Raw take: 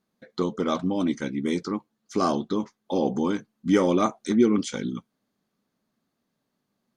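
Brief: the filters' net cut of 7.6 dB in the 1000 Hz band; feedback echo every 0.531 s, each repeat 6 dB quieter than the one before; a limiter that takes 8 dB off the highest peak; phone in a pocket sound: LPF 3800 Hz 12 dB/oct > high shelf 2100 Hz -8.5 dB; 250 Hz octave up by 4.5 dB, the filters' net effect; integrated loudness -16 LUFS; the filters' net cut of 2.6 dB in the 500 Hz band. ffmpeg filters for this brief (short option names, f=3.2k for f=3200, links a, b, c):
-af "equalizer=f=250:t=o:g=7.5,equalizer=f=500:t=o:g=-5.5,equalizer=f=1k:t=o:g=-6.5,alimiter=limit=-13.5dB:level=0:latency=1,lowpass=3.8k,highshelf=f=2.1k:g=-8.5,aecho=1:1:531|1062|1593|2124|2655|3186:0.501|0.251|0.125|0.0626|0.0313|0.0157,volume=8dB"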